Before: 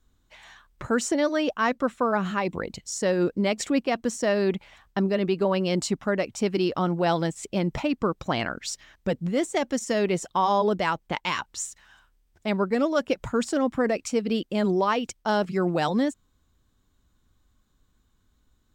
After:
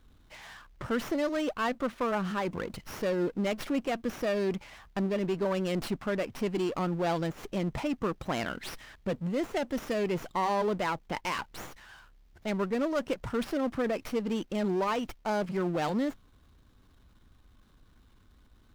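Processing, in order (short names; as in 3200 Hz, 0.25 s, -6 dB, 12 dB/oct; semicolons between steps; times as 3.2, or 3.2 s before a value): power-law curve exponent 0.7; running maximum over 5 samples; gain -8 dB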